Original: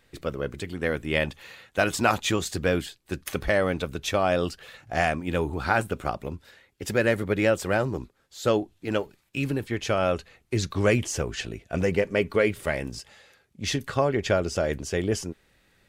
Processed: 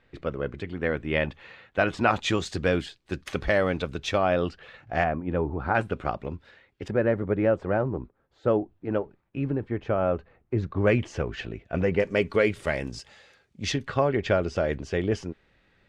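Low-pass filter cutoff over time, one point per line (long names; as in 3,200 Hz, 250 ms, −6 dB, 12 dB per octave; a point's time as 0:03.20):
2,700 Hz
from 0:02.16 5,100 Hz
from 0:04.18 2,800 Hz
from 0:05.04 1,200 Hz
from 0:05.75 3,200 Hz
from 0:06.88 1,200 Hz
from 0:10.87 2,600 Hz
from 0:12.00 6,700 Hz
from 0:13.72 3,400 Hz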